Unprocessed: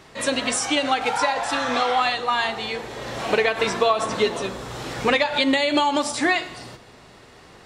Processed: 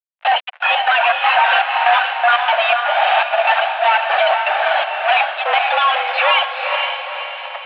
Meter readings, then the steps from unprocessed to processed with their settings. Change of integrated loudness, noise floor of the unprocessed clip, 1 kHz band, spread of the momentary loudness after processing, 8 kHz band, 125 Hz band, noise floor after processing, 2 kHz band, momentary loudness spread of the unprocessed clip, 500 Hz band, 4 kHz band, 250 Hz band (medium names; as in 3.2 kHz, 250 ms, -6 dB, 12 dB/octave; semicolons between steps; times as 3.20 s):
+6.5 dB, -48 dBFS, +10.0 dB, 5 LU, under -30 dB, under -40 dB, -43 dBFS, +9.5 dB, 11 LU, +3.5 dB, +5.5 dB, under -35 dB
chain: reverb removal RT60 1.5 s; peaking EQ 1.1 kHz -11 dB 0.22 oct; trance gate "..x..x.xx.xxx" 121 bpm -24 dB; static phaser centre 1.2 kHz, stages 8; fuzz box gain 50 dB, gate -48 dBFS; echo that smears into a reverb 479 ms, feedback 48%, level -4 dB; mistuned SSB +230 Hz 380–2700 Hz; trim +2 dB